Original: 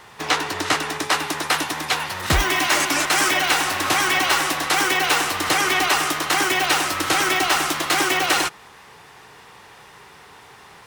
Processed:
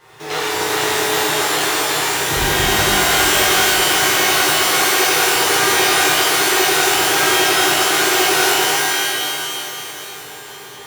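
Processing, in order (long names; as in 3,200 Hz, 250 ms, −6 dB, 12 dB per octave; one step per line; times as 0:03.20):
thirty-one-band graphic EQ 125 Hz +8 dB, 250 Hz −12 dB, 400 Hz +12 dB
in parallel at −3 dB: brickwall limiter −15 dBFS, peak gain reduction 8.5 dB
on the sum: noise that follows the level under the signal 19 dB
delay that swaps between a low-pass and a high-pass 272 ms, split 1,100 Hz, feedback 67%, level −3.5 dB
reverb with rising layers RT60 1.8 s, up +12 semitones, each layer −2 dB, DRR −10.5 dB
level −14 dB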